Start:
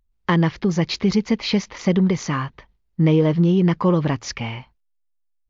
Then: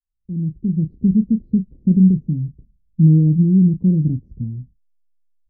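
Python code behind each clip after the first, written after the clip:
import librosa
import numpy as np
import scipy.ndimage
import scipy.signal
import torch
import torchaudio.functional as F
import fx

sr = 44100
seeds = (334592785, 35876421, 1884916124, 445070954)

y = fx.fade_in_head(x, sr, length_s=1.01)
y = scipy.signal.sosfilt(scipy.signal.cheby2(4, 70, 1100.0, 'lowpass', fs=sr, output='sos'), y)
y = fx.doubler(y, sr, ms=32.0, db=-10)
y = y * 10.0 ** (5.0 / 20.0)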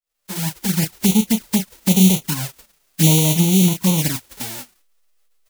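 y = fx.envelope_flatten(x, sr, power=0.1)
y = fx.rider(y, sr, range_db=3, speed_s=2.0)
y = fx.env_flanger(y, sr, rest_ms=8.6, full_db=-10.5)
y = y * 10.0 ** (-1.0 / 20.0)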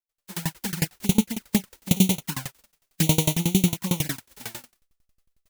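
y = fx.dynamic_eq(x, sr, hz=1500.0, q=0.85, threshold_db=-40.0, ratio=4.0, max_db=5)
y = fx.tremolo_decay(y, sr, direction='decaying', hz=11.0, depth_db=26)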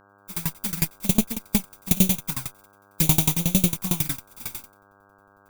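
y = fx.lower_of_two(x, sr, delay_ms=0.84)
y = fx.dmg_buzz(y, sr, base_hz=100.0, harmonics=16, level_db=-56.0, tilt_db=0, odd_only=False)
y = fx.high_shelf(y, sr, hz=9400.0, db=9.0)
y = y * 10.0 ** (-1.0 / 20.0)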